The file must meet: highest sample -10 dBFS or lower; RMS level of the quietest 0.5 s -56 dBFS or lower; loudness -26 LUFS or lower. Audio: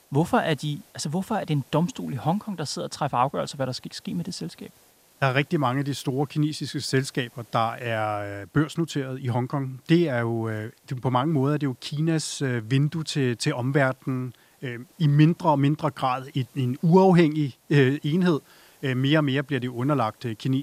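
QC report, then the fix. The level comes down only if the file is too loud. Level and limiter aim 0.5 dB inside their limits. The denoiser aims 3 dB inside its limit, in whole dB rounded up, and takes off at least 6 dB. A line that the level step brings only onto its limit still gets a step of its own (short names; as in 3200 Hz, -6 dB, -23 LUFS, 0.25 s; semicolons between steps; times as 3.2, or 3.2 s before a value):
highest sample -5.5 dBFS: fail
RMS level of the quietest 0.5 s -58 dBFS: OK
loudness -25.0 LUFS: fail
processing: gain -1.5 dB; limiter -10.5 dBFS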